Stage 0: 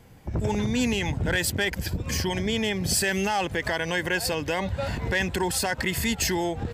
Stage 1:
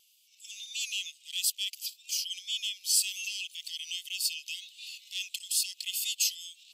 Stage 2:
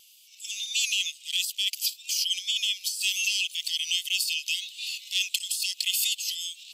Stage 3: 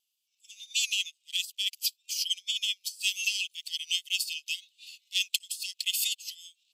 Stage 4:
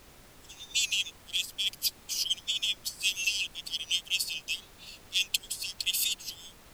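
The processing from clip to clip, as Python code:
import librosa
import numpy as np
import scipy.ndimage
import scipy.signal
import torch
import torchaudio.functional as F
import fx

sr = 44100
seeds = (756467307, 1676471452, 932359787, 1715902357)

y1 = scipy.signal.sosfilt(scipy.signal.butter(12, 2700.0, 'highpass', fs=sr, output='sos'), x)
y1 = fx.wow_flutter(y1, sr, seeds[0], rate_hz=2.1, depth_cents=22.0)
y2 = fx.over_compress(y1, sr, threshold_db=-34.0, ratio=-1.0)
y2 = y2 * librosa.db_to_amplitude(7.5)
y3 = fx.upward_expand(y2, sr, threshold_db=-41.0, expansion=2.5)
y4 = fx.dmg_noise_colour(y3, sr, seeds[1], colour='pink', level_db=-54.0)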